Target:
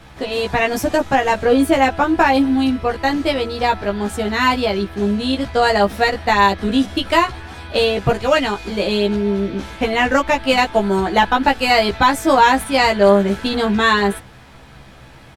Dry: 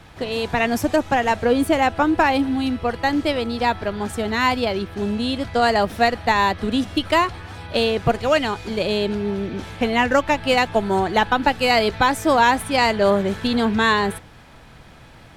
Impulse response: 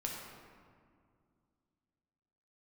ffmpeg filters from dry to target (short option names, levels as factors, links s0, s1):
-filter_complex "[0:a]asplit=2[s0][s1];[s1]adelay=15,volume=0.794[s2];[s0][s2]amix=inputs=2:normalize=0,volume=1.12"